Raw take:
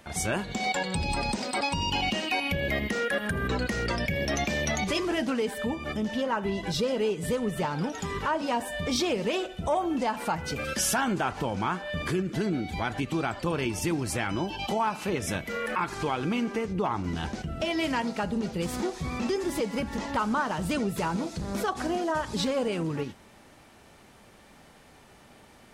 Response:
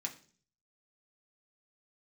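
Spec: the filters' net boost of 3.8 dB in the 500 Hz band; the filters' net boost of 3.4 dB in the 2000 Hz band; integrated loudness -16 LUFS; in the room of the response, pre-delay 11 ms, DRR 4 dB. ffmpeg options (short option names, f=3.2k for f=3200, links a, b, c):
-filter_complex "[0:a]equalizer=f=500:t=o:g=4.5,equalizer=f=2k:t=o:g=4,asplit=2[a][b];[1:a]atrim=start_sample=2205,adelay=11[c];[b][c]afir=irnorm=-1:irlink=0,volume=-3.5dB[d];[a][d]amix=inputs=2:normalize=0,volume=10dB"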